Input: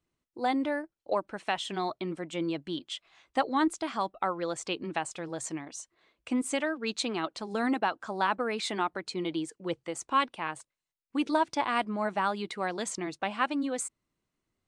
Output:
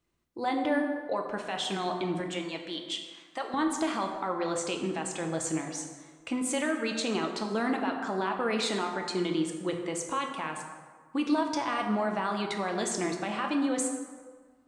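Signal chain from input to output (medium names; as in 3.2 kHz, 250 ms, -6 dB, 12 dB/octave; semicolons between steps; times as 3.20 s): 2.20–3.54 s: high-pass 850 Hz 6 dB/octave; peak limiter -25 dBFS, peak gain reduction 12 dB; plate-style reverb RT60 1.6 s, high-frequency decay 0.55×, DRR 2.5 dB; trim +3 dB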